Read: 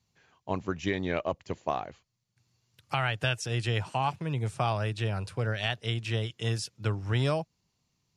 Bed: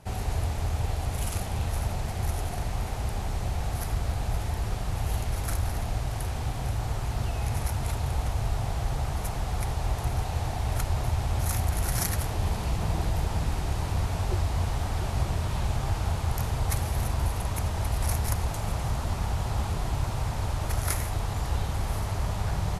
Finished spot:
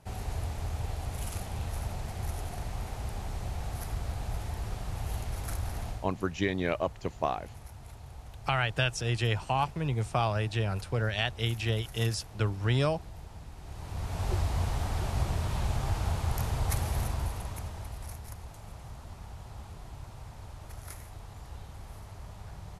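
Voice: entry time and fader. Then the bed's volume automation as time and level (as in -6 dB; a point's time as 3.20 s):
5.55 s, +0.5 dB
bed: 5.89 s -6 dB
6.12 s -18 dB
13.55 s -18 dB
14.28 s -2.5 dB
16.95 s -2.5 dB
18.21 s -16 dB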